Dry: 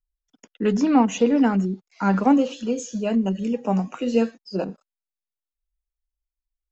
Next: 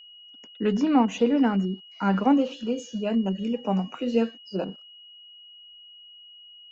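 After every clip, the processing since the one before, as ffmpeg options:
-af "lowpass=4.9k,aeval=exprs='val(0)+0.00708*sin(2*PI*2900*n/s)':c=same,volume=-3dB"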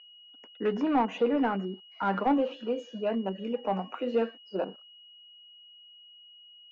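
-filter_complex "[0:a]bass=f=250:g=-7,treble=f=4k:g=-9,asplit=2[a][b];[b]highpass=f=720:p=1,volume=15dB,asoftclip=type=tanh:threshold=-10dB[c];[a][c]amix=inputs=2:normalize=0,lowpass=f=1.1k:p=1,volume=-6dB,volume=-4dB"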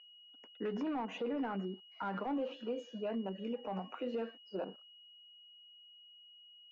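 -af "alimiter=level_in=0.5dB:limit=-24dB:level=0:latency=1:release=60,volume=-0.5dB,volume=-5.5dB"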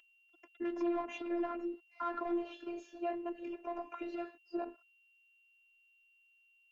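-af "afftfilt=real='hypot(re,im)*cos(PI*b)':imag='0':win_size=512:overlap=0.75,volume=5dB"

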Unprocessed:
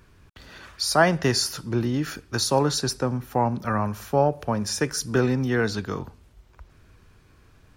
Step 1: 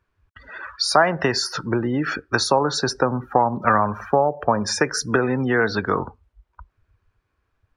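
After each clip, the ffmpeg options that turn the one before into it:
-af "acompressor=threshold=-24dB:ratio=12,equalizer=f=1.1k:w=0.3:g=12.5,afftdn=nr=27:nf=-33,volume=1.5dB"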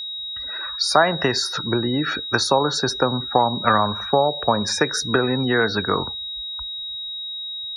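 -af "aeval=exprs='val(0)+0.0398*sin(2*PI*3800*n/s)':c=same"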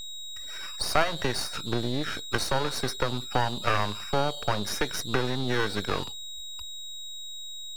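-af "aeval=exprs='max(val(0),0)':c=same,volume=-4dB"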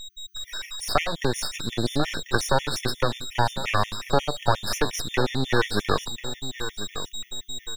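-af "aecho=1:1:1042|2084|3126:0.237|0.0593|0.0148,dynaudnorm=f=120:g=5:m=7dB,afftfilt=real='re*gt(sin(2*PI*5.6*pts/sr)*(1-2*mod(floor(b*sr/1024/1800),2)),0)':imag='im*gt(sin(2*PI*5.6*pts/sr)*(1-2*mod(floor(b*sr/1024/1800),2)),0)':win_size=1024:overlap=0.75"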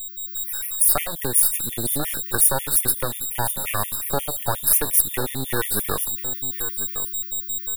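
-af "aexciter=amount=11.7:drive=10:freq=9k,volume=-3.5dB"

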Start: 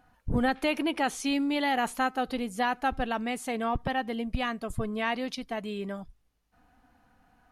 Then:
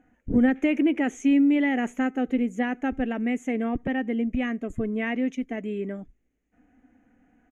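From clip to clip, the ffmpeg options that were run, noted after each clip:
-af "firequalizer=gain_entry='entry(150,0);entry(250,13);entry(1000,-9);entry(2000,7);entry(3200,-6);entry(4600,-27);entry(6500,3);entry(9300,-15)':delay=0.05:min_phase=1,volume=-3dB"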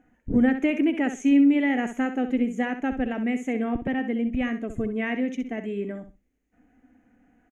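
-af "aecho=1:1:64|128|192:0.316|0.0601|0.0114"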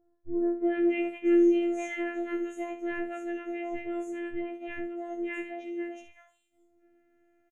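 -filter_complex "[0:a]afftfilt=real='hypot(re,im)*cos(PI*b)':imag='0':win_size=512:overlap=0.75,acrossover=split=1000|4900[a][b][c];[b]adelay=280[d];[c]adelay=650[e];[a][d][e]amix=inputs=3:normalize=0,afftfilt=real='re*2*eq(mod(b,4),0)':imag='im*2*eq(mod(b,4),0)':win_size=2048:overlap=0.75,volume=-5dB"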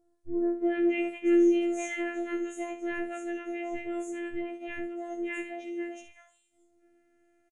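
-af "aemphasis=mode=production:type=50fm,aresample=22050,aresample=44100"

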